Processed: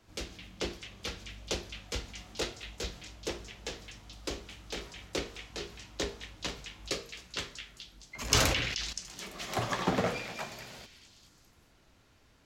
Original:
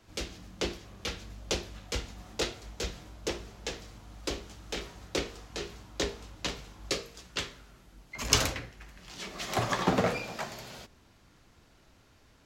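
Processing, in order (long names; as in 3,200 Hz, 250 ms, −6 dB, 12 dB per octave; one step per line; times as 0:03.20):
echo through a band-pass that steps 215 ms, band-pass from 2,500 Hz, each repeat 0.7 octaves, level −5 dB
0:08.19–0:08.93: level that may fall only so fast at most 35 dB per second
level −3 dB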